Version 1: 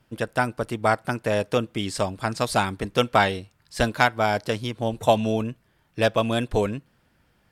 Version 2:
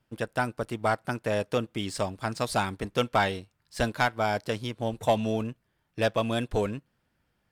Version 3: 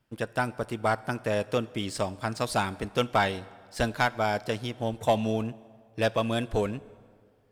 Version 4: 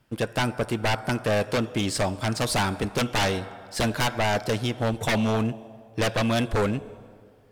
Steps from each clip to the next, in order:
waveshaping leveller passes 1; trim -8 dB
plate-style reverb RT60 2 s, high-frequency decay 0.7×, DRR 18.5 dB
sine folder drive 12 dB, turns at -11.5 dBFS; trim -7.5 dB

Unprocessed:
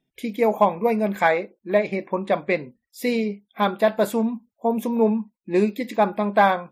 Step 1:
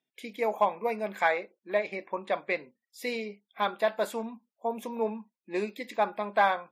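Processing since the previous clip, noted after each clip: frequency weighting A; trim -6 dB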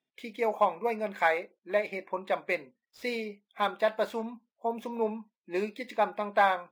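median filter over 5 samples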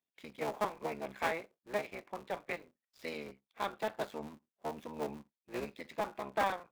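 cycle switcher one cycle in 3, muted; trim -7 dB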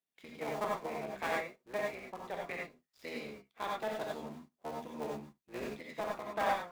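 gated-style reverb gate 120 ms rising, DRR -1 dB; trim -3.5 dB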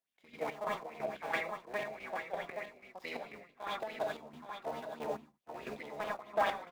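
square tremolo 3 Hz, depth 65%, duty 50%; delay 822 ms -8 dB; sweeping bell 4.7 Hz 590–3300 Hz +11 dB; trim -2.5 dB

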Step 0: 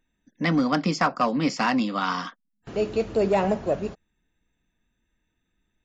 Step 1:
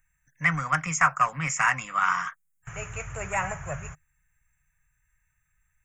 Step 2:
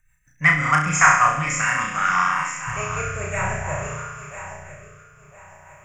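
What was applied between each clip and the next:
FFT filter 150 Hz 0 dB, 220 Hz -30 dB, 380 Hz -26 dB, 1.3 kHz +2 dB, 2.3 kHz +3 dB, 4.4 kHz -27 dB, 6.7 kHz +9 dB; trim +3.5 dB
backward echo that repeats 503 ms, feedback 60%, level -12.5 dB; flutter echo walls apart 5.7 m, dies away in 0.91 s; rotary cabinet horn 6 Hz, later 0.6 Hz, at 0.28 s; trim +6 dB

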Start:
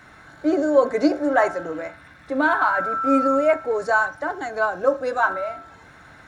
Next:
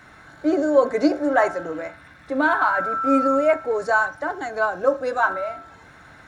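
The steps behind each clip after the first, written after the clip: no audible change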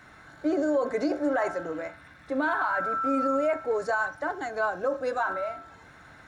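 peak limiter -14 dBFS, peak gain reduction 8.5 dB; trim -4 dB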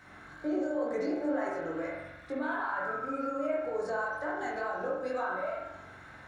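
compression 4:1, threshold -31 dBFS, peak gain reduction 8.5 dB; chorus 2.1 Hz, delay 20 ms, depth 4.5 ms; reverberation RT60 0.85 s, pre-delay 43 ms, DRR -1 dB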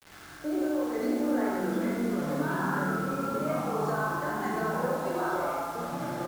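feedback delay 89 ms, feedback 55%, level -6 dB; word length cut 8-bit, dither none; ever faster or slower copies 435 ms, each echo -4 st, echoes 3

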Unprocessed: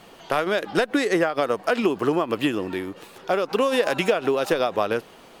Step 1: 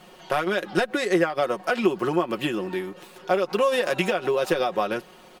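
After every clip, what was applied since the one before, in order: comb 5.5 ms, depth 69%; trim -3 dB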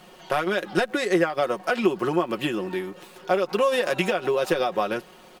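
crackle 260 per s -48 dBFS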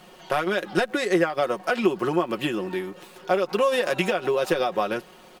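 no audible change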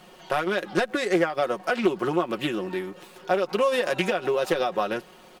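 loudspeaker Doppler distortion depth 0.18 ms; trim -1 dB

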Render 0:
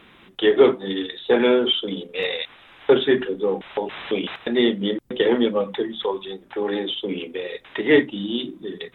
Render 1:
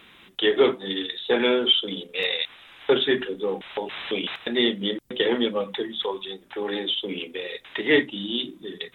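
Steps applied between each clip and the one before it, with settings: treble shelf 2.2 kHz +11 dB; trim -5 dB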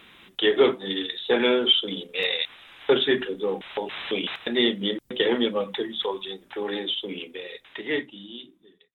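fade out at the end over 2.54 s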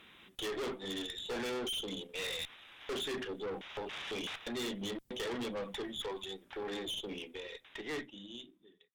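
valve stage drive 30 dB, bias 0.45; trim -5.5 dB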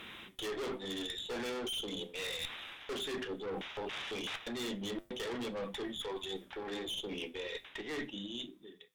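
reverse; compression 6:1, threshold -48 dBFS, peak gain reduction 11.5 dB; reverse; flange 0.23 Hz, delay 8.5 ms, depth 5 ms, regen -79%; trim +14 dB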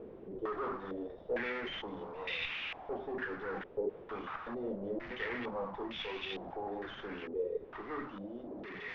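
one-bit delta coder 32 kbps, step -38.5 dBFS; step-sequenced low-pass 2.2 Hz 450–2600 Hz; trim -2.5 dB

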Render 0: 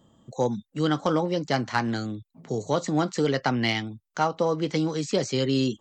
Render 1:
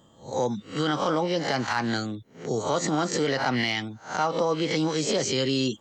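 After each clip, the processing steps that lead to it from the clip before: reverse spectral sustain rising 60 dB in 0.35 s; peak limiter -17.5 dBFS, peak gain reduction 8 dB; bass shelf 410 Hz -6.5 dB; trim +4.5 dB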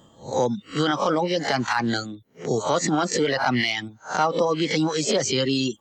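reverb removal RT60 1.1 s; trim +4.5 dB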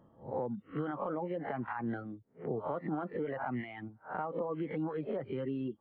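compression, threshold -23 dBFS, peak gain reduction 7.5 dB; Gaussian low-pass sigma 5 samples; trim -8 dB

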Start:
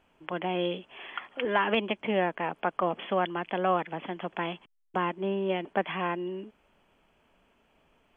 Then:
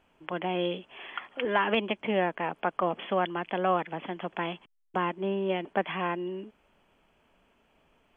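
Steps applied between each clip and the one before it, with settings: no audible change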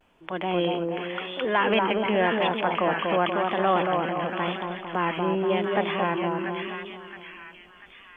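two-band feedback delay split 1.4 kHz, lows 233 ms, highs 681 ms, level -3.5 dB; transient shaper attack -3 dB, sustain +3 dB; vibrato 0.91 Hz 68 cents; trim +3.5 dB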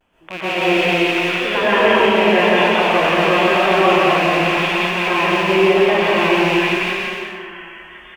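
rattle on loud lows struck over -43 dBFS, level -17 dBFS; loudspeakers at several distances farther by 60 m -2 dB, 93 m -7 dB; plate-style reverb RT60 0.67 s, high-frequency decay 1×, pre-delay 105 ms, DRR -7.5 dB; trim -1.5 dB

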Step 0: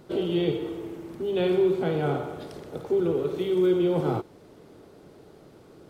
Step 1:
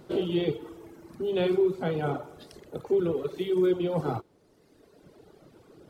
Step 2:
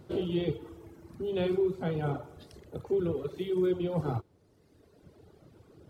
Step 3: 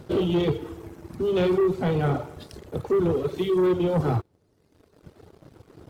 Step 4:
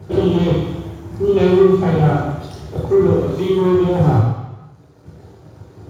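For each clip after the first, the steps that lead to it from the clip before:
reverb removal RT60 1.6 s
peaking EQ 82 Hz +12.5 dB 1.5 oct; trim -5 dB
waveshaping leveller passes 2; trim +2.5 dB
reverberation RT60 1.1 s, pre-delay 3 ms, DRR -3 dB; trim +3 dB

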